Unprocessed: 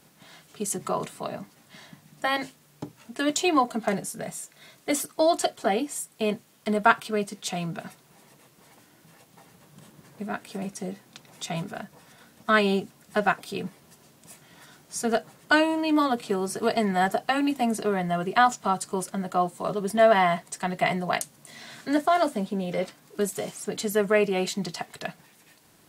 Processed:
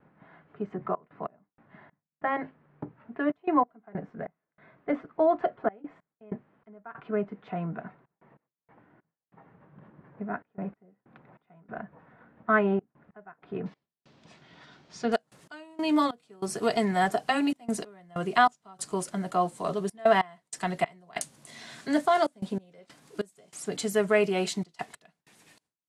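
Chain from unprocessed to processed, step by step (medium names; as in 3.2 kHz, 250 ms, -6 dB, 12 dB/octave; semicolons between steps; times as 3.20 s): trance gate "xxxxxx.x..xx..x" 95 bpm -24 dB; gate with hold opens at -54 dBFS; low-pass 1.8 kHz 24 dB/octave, from 13.66 s 4.7 kHz, from 15.12 s 11 kHz; trim -1.5 dB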